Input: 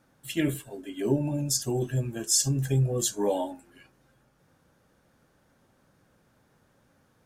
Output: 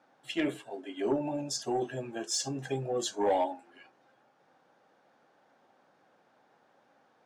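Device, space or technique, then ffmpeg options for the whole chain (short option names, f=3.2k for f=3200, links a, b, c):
intercom: -af "highpass=320,lowpass=4.4k,equalizer=f=770:t=o:w=0.47:g=8.5,asoftclip=type=tanh:threshold=-19dB"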